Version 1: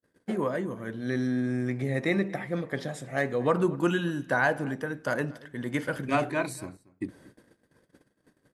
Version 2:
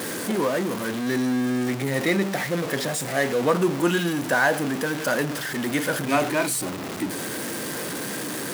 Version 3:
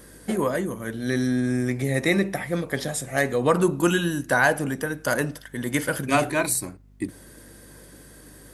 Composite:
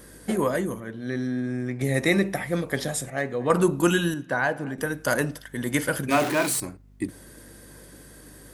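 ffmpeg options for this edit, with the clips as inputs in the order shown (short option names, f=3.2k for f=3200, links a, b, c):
-filter_complex "[0:a]asplit=3[a][b][c];[2:a]asplit=5[d][e][f][g][h];[d]atrim=end=0.802[i];[a]atrim=start=0.798:end=1.812[j];[e]atrim=start=1.808:end=3.102[k];[b]atrim=start=3.098:end=3.502[l];[f]atrim=start=3.498:end=4.142[m];[c]atrim=start=4.138:end=4.782[n];[g]atrim=start=4.778:end=6.112[o];[1:a]atrim=start=6.108:end=6.602[p];[h]atrim=start=6.598[q];[i][j]acrossfade=d=0.004:c1=hsin:c2=hsin[r];[r][k]acrossfade=d=0.004:c1=hsin:c2=hsin[s];[s][l]acrossfade=d=0.004:c1=hsin:c2=hsin[t];[t][m]acrossfade=d=0.004:c1=hsin:c2=hsin[u];[u][n]acrossfade=d=0.004:c1=hsin:c2=hsin[v];[v][o]acrossfade=d=0.004:c1=hsin:c2=hsin[w];[w][p]acrossfade=d=0.004:c1=hsin:c2=hsin[x];[x][q]acrossfade=d=0.004:c1=hsin:c2=hsin"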